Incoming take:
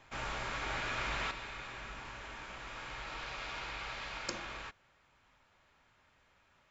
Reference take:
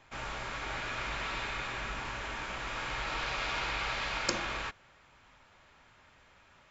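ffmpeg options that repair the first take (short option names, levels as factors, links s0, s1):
-af "asetnsamples=n=441:p=0,asendcmd='1.31 volume volume 8dB',volume=1"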